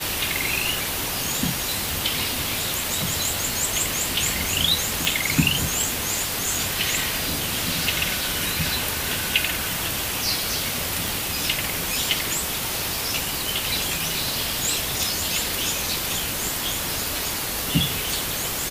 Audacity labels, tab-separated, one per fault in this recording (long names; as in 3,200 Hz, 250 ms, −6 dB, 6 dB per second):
1.890000	1.890000	click
5.050000	5.050000	click
11.080000	11.080000	click